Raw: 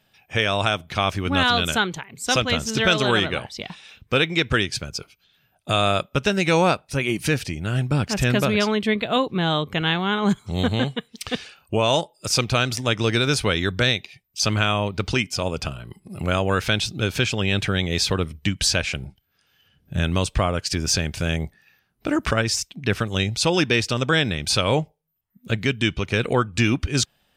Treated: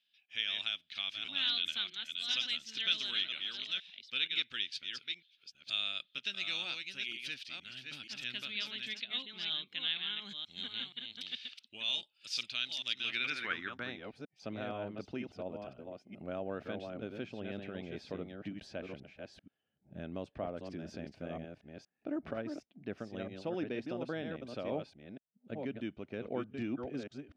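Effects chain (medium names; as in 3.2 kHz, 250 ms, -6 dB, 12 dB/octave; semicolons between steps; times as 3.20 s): chunks repeated in reverse 475 ms, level -5 dB; 13.12–13.54 s: peaking EQ 800 Hz +5 dB 1.9 oct; band-pass sweep 3.5 kHz -> 620 Hz, 12.97–14.16 s; ten-band graphic EQ 250 Hz +8 dB, 500 Hz -7 dB, 1 kHz -9 dB, 8 kHz -8 dB; trim -6 dB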